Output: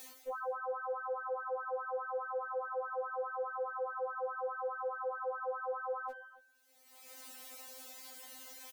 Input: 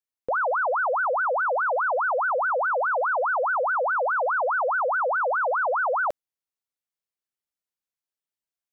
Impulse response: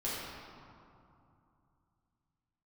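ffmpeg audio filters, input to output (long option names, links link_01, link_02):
-filter_complex "[0:a]equalizer=frequency=630:width_type=o:width=0.84:gain=7.5,bandreject=frequency=310.3:width_type=h:width=4,bandreject=frequency=620.6:width_type=h:width=4,bandreject=frequency=930.9:width_type=h:width=4,bandreject=frequency=1241.2:width_type=h:width=4,bandreject=frequency=1551.5:width_type=h:width=4,bandreject=frequency=1861.8:width_type=h:width=4,bandreject=frequency=2172.1:width_type=h:width=4,bandreject=frequency=2482.4:width_type=h:width=4,bandreject=frequency=2792.7:width_type=h:width=4,bandreject=frequency=3103:width_type=h:width=4,acrossover=split=100[link_01][link_02];[link_02]acompressor=mode=upward:threshold=-28dB:ratio=2.5[link_03];[link_01][link_03]amix=inputs=2:normalize=0,alimiter=level_in=3.5dB:limit=-24dB:level=0:latency=1:release=27,volume=-3.5dB,areverse,acompressor=threshold=-45dB:ratio=6,areverse,aecho=1:1:277:0.106,afftfilt=real='re*3.46*eq(mod(b,12),0)':imag='im*3.46*eq(mod(b,12),0)':win_size=2048:overlap=0.75,volume=7.5dB"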